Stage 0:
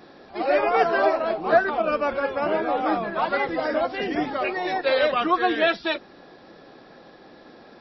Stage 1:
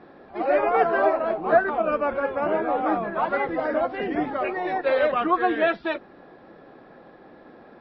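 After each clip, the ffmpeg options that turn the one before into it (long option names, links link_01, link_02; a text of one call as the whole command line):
ffmpeg -i in.wav -af "lowpass=2000" out.wav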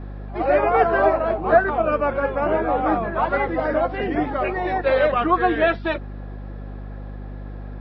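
ffmpeg -i in.wav -af "aeval=exprs='val(0)+0.0178*(sin(2*PI*50*n/s)+sin(2*PI*2*50*n/s)/2+sin(2*PI*3*50*n/s)/3+sin(2*PI*4*50*n/s)/4+sin(2*PI*5*50*n/s)/5)':channel_layout=same,volume=3dB" out.wav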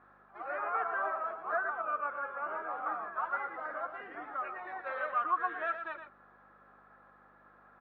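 ffmpeg -i in.wav -af "areverse,acompressor=mode=upward:threshold=-26dB:ratio=2.5,areverse,bandpass=frequency=1300:width_type=q:width=4:csg=0,aecho=1:1:115:0.376,volume=-6dB" out.wav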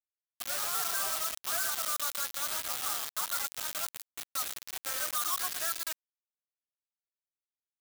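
ffmpeg -i in.wav -af "asoftclip=type=tanh:threshold=-25dB,acrusher=bits=5:mix=0:aa=0.000001,crystalizer=i=5.5:c=0,volume=-7.5dB" out.wav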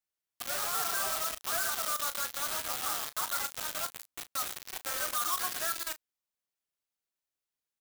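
ffmpeg -i in.wav -filter_complex "[0:a]asplit=2[link_01][link_02];[link_02]aeval=exprs='0.0251*(abs(mod(val(0)/0.0251+3,4)-2)-1)':channel_layout=same,volume=-5dB[link_03];[link_01][link_03]amix=inputs=2:normalize=0,asplit=2[link_04][link_05];[link_05]adelay=35,volume=-13dB[link_06];[link_04][link_06]amix=inputs=2:normalize=0" out.wav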